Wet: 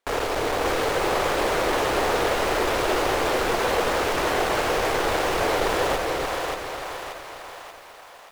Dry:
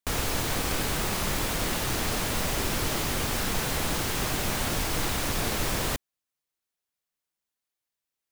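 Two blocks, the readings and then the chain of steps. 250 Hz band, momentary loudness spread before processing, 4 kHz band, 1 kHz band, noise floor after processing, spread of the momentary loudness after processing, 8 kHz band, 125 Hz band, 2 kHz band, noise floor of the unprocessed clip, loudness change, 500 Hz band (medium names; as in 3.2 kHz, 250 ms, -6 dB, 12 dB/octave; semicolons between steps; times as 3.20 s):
+3.0 dB, 0 LU, +2.0 dB, +10.0 dB, -45 dBFS, 11 LU, -3.5 dB, -4.0 dB, +6.5 dB, under -85 dBFS, +4.5 dB, +12.0 dB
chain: in parallel at -9.5 dB: sine folder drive 13 dB, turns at -14 dBFS; on the sum: peak limiter -24 dBFS, peak gain reduction 9.5 dB; low-pass 1.3 kHz 6 dB/octave; resonant low shelf 290 Hz -13 dB, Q 1.5; on a send: two-band feedback delay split 610 Hz, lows 289 ms, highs 582 ms, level -3 dB; on the sum: bit-crushed delay 416 ms, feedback 55%, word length 9-bit, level -11 dB; trim +8.5 dB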